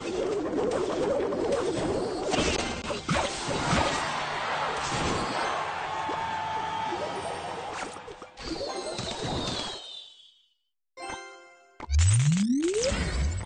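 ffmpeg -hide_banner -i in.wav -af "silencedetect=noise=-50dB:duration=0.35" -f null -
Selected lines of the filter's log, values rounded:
silence_start: 10.29
silence_end: 10.97 | silence_duration: 0.68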